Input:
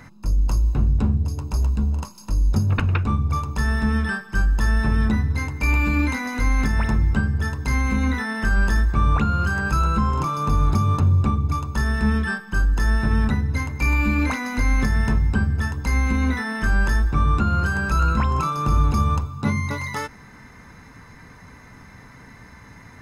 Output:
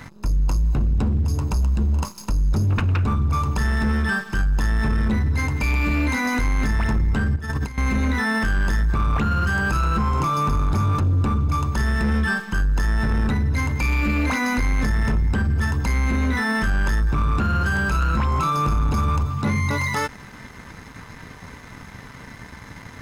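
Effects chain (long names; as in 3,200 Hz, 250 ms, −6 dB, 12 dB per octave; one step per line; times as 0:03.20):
leveller curve on the samples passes 2
0:07.36–0:07.78: compressor whose output falls as the input rises −23 dBFS, ratio −0.5
brickwall limiter −15.5 dBFS, peak gain reduction 7.5 dB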